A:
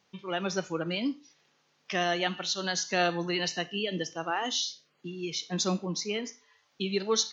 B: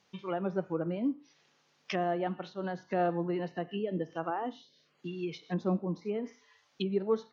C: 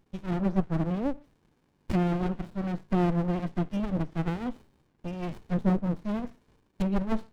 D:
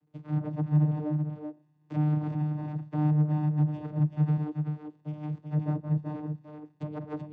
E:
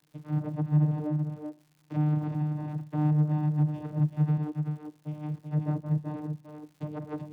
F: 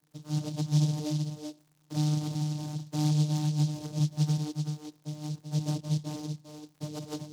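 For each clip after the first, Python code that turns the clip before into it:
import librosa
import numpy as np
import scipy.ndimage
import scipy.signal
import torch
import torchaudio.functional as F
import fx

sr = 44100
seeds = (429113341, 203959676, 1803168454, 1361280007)

y1 = fx.env_lowpass_down(x, sr, base_hz=860.0, full_db=-28.5)
y2 = fx.low_shelf(y1, sr, hz=76.0, db=10.5)
y2 = fx.running_max(y2, sr, window=65)
y2 = y2 * librosa.db_to_amplitude(5.5)
y3 = fx.vocoder(y2, sr, bands=16, carrier='saw', carrier_hz=151.0)
y3 = y3 + 10.0 ** (-5.5 / 20.0) * np.pad(y3, (int(383 * sr / 1000.0), 0))[:len(y3)]
y4 = fx.dmg_crackle(y3, sr, seeds[0], per_s=220.0, level_db=-52.0)
y5 = fx.noise_mod_delay(y4, sr, seeds[1], noise_hz=4700.0, depth_ms=0.11)
y5 = y5 * librosa.db_to_amplitude(-1.5)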